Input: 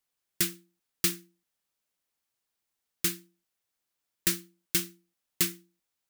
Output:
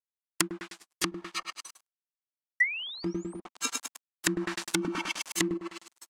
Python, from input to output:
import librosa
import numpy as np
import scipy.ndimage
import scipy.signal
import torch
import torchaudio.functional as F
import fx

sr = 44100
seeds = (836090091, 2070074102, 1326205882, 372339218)

y = fx.reverse_delay_fb(x, sr, ms=305, feedback_pct=47, wet_db=-4.0)
y = fx.noise_reduce_blind(y, sr, reduce_db=29)
y = fx.echo_feedback(y, sr, ms=102, feedback_pct=40, wet_db=-6.5)
y = fx.spec_paint(y, sr, seeds[0], shape='rise', start_s=2.6, length_s=0.8, low_hz=1900.0, high_hz=9900.0, level_db=-30.0)
y = fx.leveller(y, sr, passes=1)
y = np.sign(y) * np.maximum(np.abs(y) - 10.0 ** (-54.5 / 20.0), 0.0)
y = fx.graphic_eq(y, sr, hz=(125, 250, 1000, 8000), db=(-11, 8, 10, 5))
y = fx.env_lowpass_down(y, sr, base_hz=310.0, full_db=-19.5)
y = fx.low_shelf(y, sr, hz=380.0, db=-11.5)
y = fx.env_flatten(y, sr, amount_pct=50, at=(3.06, 5.54))
y = y * 10.0 ** (6.0 / 20.0)